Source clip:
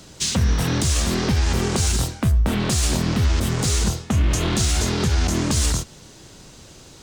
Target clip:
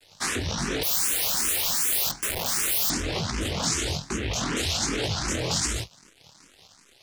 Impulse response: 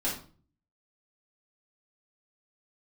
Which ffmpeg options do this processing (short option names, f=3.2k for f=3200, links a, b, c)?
-filter_complex "[0:a]afreqshift=-29,aeval=exprs='abs(val(0))':c=same,flanger=delay=18:depth=7.1:speed=1.2,aeval=exprs='0.299*(cos(1*acos(clip(val(0)/0.299,-1,1)))-cos(1*PI/2))+0.0237*(cos(3*acos(clip(val(0)/0.299,-1,1)))-cos(3*PI/2))+0.0211*(cos(4*acos(clip(val(0)/0.299,-1,1)))-cos(4*PI/2))+0.119*(cos(6*acos(clip(val(0)/0.299,-1,1)))-cos(6*PI/2))+0.00376*(cos(7*acos(clip(val(0)/0.299,-1,1)))-cos(7*PI/2))':c=same,highpass=f=47:w=0.5412,highpass=f=47:w=1.3066,acrusher=bits=7:mix=0:aa=0.000001,lowpass=5.3k,asettb=1/sr,asplit=3[a][b][c];[a]atrim=end=0.834[d];[b]atrim=start=0.83:end=2.9,asetpts=PTS-STARTPTS,afade=t=in:d=0.004:c=qsin,afade=t=out:st=2.066:d=0.004:c=qsin,aeval=exprs='(mod(16.8*val(0)+1,2)-1)/16.8':c=same[e];[c]atrim=start=2.896[f];[d][e]acrossfade=d=0.004:c1=hsin:c2=qsin[g];[g][f]acrossfade=d=0.004:c1=qsin:c2=hsin,alimiter=limit=-18dB:level=0:latency=1:release=39,highshelf=f=3.9k:g=10,asplit=2[h][i];[i]afreqshift=2.6[j];[h][j]amix=inputs=2:normalize=1"